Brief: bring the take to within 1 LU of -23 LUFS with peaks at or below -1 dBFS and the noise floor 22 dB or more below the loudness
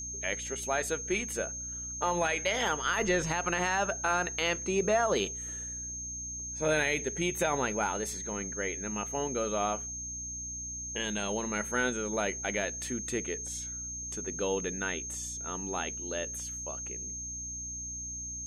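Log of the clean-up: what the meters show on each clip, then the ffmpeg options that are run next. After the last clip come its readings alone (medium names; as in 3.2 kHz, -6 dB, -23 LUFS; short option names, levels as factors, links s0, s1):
hum 60 Hz; highest harmonic 300 Hz; hum level -44 dBFS; steady tone 6.4 kHz; tone level -37 dBFS; loudness -32.0 LUFS; peak level -17.5 dBFS; loudness target -23.0 LUFS
-> -af "bandreject=f=60:t=h:w=6,bandreject=f=120:t=h:w=6,bandreject=f=180:t=h:w=6,bandreject=f=240:t=h:w=6,bandreject=f=300:t=h:w=6"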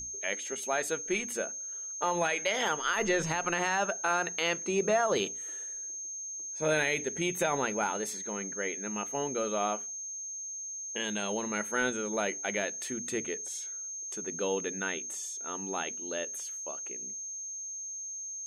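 hum not found; steady tone 6.4 kHz; tone level -37 dBFS
-> -af "bandreject=f=6400:w=30"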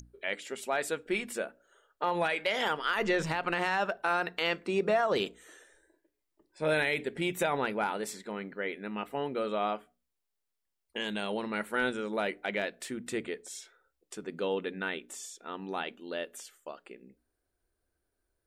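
steady tone not found; loudness -32.5 LUFS; peak level -17.5 dBFS; loudness target -23.0 LUFS
-> -af "volume=2.99"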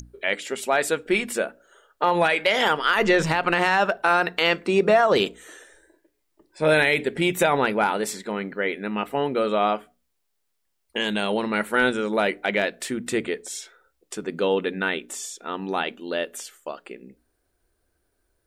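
loudness -23.0 LUFS; peak level -8.0 dBFS; noise floor -74 dBFS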